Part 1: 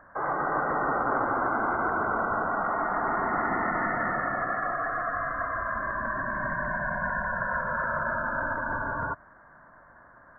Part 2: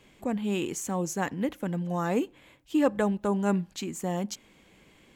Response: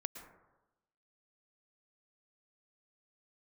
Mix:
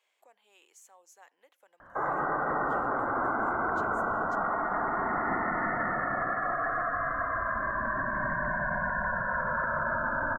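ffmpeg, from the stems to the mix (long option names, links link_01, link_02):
-filter_complex "[0:a]adelay=1800,volume=0dB[link_01];[1:a]acompressor=threshold=-41dB:ratio=2,highpass=frequency=590:width=0.5412,highpass=frequency=590:width=1.3066,volume=-14.5dB[link_02];[link_01][link_02]amix=inputs=2:normalize=0,alimiter=limit=-21dB:level=0:latency=1:release=33"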